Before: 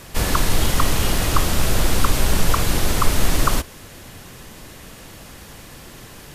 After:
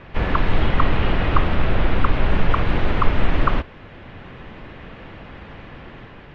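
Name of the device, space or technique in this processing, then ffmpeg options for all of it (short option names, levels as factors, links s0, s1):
action camera in a waterproof case: -filter_complex "[0:a]asettb=1/sr,asplit=3[s0][s1][s2];[s0]atrim=end=0.664[s3];[s1]atrim=start=0.66:end=2.31,asetpts=PTS-STARTPTS,afade=t=in:d=0.004:c=qsin,afade=t=out:st=1.646:d=0.004:c=qsin,acrossover=split=6700[s4][s5];[s5]acompressor=threshold=0.00891:ratio=4:attack=1:release=60[s6];[s4][s6]amix=inputs=2:normalize=0[s7];[s2]atrim=start=2.306[s8];[s3][s7]acrossfade=d=0.004:c1=hsin:c2=qsin[s9];[s9][s8]acrossfade=d=0.004:c1=qsin:c2=hsin,lowpass=f=2700:w=0.5412,lowpass=f=2700:w=1.3066,dynaudnorm=f=150:g=7:m=1.41" -ar 48000 -c:a aac -b:a 48k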